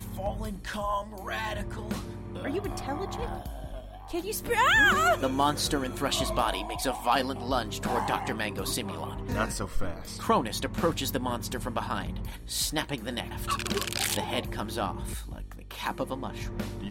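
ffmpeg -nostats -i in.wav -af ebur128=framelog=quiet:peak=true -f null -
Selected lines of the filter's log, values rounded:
Integrated loudness:
  I:         -29.7 LUFS
  Threshold: -39.9 LUFS
Loudness range:
  LRA:         8.5 LU
  Threshold: -49.4 LUFS
  LRA low:   -34.2 LUFS
  LRA high:  -25.6 LUFS
True peak:
  Peak:      -11.8 dBFS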